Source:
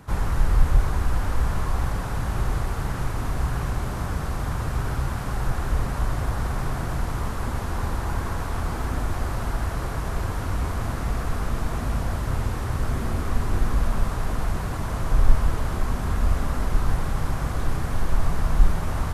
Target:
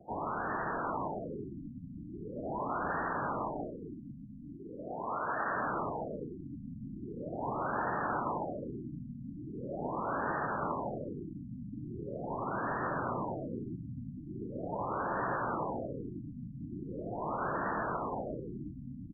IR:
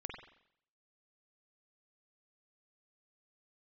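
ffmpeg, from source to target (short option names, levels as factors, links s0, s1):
-filter_complex "[0:a]asettb=1/sr,asplit=3[s0][s1][s2];[s0]atrim=end=3.674[s3];[s1]atrim=start=3.67:end=5.55,asetpts=PTS-STARTPTS,afade=t=in:d=0.004:c=qsin,afade=t=out:st=1.876:d=0.004:c=qsin,aemphasis=mode=production:type=riaa[s4];[s2]atrim=start=5.546[s5];[s3][s4]acrossfade=d=0.004:c1=hsin:c2=qsin[s6];[s6][s5]acrossfade=d=0.004:c1=qsin:c2=hsin,highpass=f=270:t=q:w=0.5412,highpass=f=270:t=q:w=1.307,lowpass=f=3300:t=q:w=0.5176,lowpass=f=3300:t=q:w=0.7071,lowpass=f=3300:t=q:w=1.932,afreqshift=-110,crystalizer=i=6.5:c=0,asplit=2[s7][s8];[s8]aecho=0:1:886:0.596[s9];[s7][s9]amix=inputs=2:normalize=0,afftfilt=real='re*lt(b*sr/1024,280*pow(1900/280,0.5+0.5*sin(2*PI*0.41*pts/sr)))':imag='im*lt(b*sr/1024,280*pow(1900/280,0.5+0.5*sin(2*PI*0.41*pts/sr)))':win_size=1024:overlap=0.75,volume=0.75"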